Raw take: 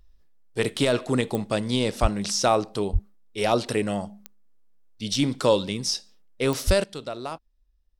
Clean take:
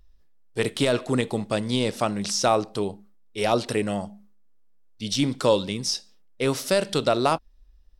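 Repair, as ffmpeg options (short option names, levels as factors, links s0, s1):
-filter_complex "[0:a]adeclick=t=4,asplit=3[s0][s1][s2];[s0]afade=t=out:st=2.01:d=0.02[s3];[s1]highpass=f=140:w=0.5412,highpass=f=140:w=1.3066,afade=t=in:st=2.01:d=0.02,afade=t=out:st=2.13:d=0.02[s4];[s2]afade=t=in:st=2.13:d=0.02[s5];[s3][s4][s5]amix=inputs=3:normalize=0,asplit=3[s6][s7][s8];[s6]afade=t=out:st=2.92:d=0.02[s9];[s7]highpass=f=140:w=0.5412,highpass=f=140:w=1.3066,afade=t=in:st=2.92:d=0.02,afade=t=out:st=3.04:d=0.02[s10];[s8]afade=t=in:st=3.04:d=0.02[s11];[s9][s10][s11]amix=inputs=3:normalize=0,asplit=3[s12][s13][s14];[s12]afade=t=out:st=6.66:d=0.02[s15];[s13]highpass=f=140:w=0.5412,highpass=f=140:w=1.3066,afade=t=in:st=6.66:d=0.02,afade=t=out:st=6.78:d=0.02[s16];[s14]afade=t=in:st=6.78:d=0.02[s17];[s15][s16][s17]amix=inputs=3:normalize=0,asetnsamples=n=441:p=0,asendcmd='6.84 volume volume 12dB',volume=1"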